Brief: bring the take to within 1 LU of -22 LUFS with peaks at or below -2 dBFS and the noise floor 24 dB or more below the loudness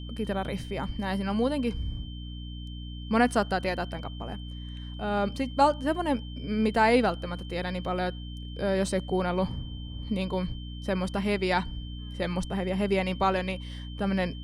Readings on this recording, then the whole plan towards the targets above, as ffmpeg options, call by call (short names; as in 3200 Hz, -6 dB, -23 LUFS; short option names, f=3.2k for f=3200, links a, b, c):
hum 60 Hz; harmonics up to 300 Hz; hum level -36 dBFS; steady tone 3100 Hz; tone level -47 dBFS; loudness -29.0 LUFS; peak -10.0 dBFS; loudness target -22.0 LUFS
-> -af "bandreject=f=60:t=h:w=6,bandreject=f=120:t=h:w=6,bandreject=f=180:t=h:w=6,bandreject=f=240:t=h:w=6,bandreject=f=300:t=h:w=6"
-af "bandreject=f=3.1k:w=30"
-af "volume=7dB"